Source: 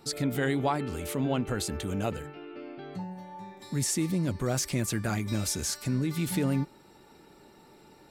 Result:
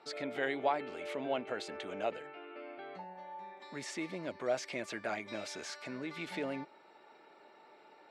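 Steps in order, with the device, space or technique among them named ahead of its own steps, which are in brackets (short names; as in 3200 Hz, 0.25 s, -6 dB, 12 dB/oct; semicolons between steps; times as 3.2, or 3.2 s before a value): tin-can telephone (BPF 550–2800 Hz; small resonant body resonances 630/2200 Hz, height 7 dB); dynamic EQ 1200 Hz, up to -6 dB, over -49 dBFS, Q 1.6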